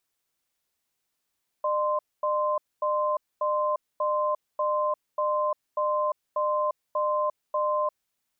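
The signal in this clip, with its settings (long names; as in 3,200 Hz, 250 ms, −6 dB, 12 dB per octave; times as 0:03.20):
tone pair in a cadence 604 Hz, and 1,040 Hz, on 0.35 s, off 0.24 s, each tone −25.5 dBFS 6.37 s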